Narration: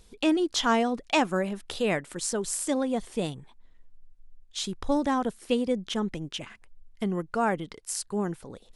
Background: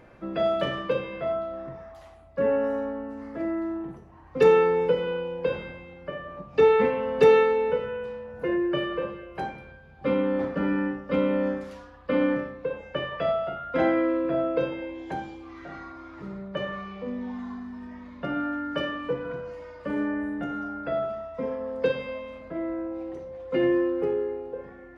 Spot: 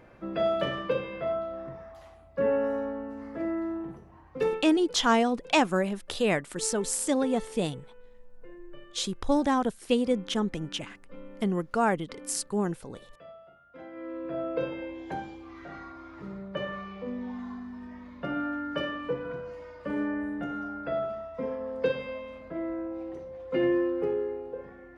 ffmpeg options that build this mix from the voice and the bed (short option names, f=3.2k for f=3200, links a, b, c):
-filter_complex "[0:a]adelay=4400,volume=1dB[a];[1:a]volume=18.5dB,afade=t=out:st=4.16:d=0.46:silence=0.0891251,afade=t=in:st=13.91:d=0.89:silence=0.0944061[b];[a][b]amix=inputs=2:normalize=0"